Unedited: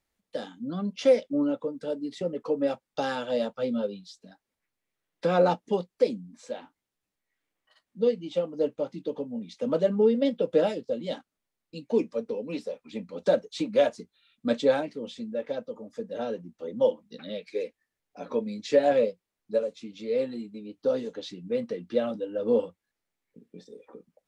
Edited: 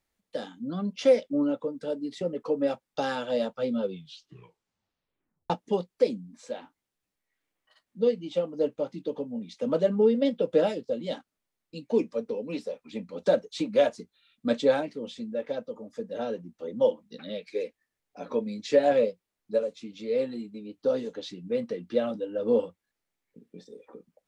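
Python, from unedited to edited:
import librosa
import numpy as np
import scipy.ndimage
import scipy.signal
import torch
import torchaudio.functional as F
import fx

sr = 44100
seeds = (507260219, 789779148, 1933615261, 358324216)

y = fx.edit(x, sr, fx.tape_stop(start_s=3.8, length_s=1.7), tone=tone)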